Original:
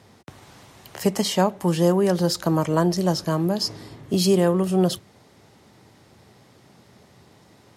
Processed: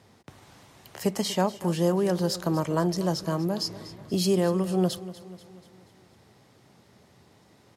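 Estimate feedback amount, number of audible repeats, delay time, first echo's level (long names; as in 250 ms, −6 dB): 54%, 4, 242 ms, −16.5 dB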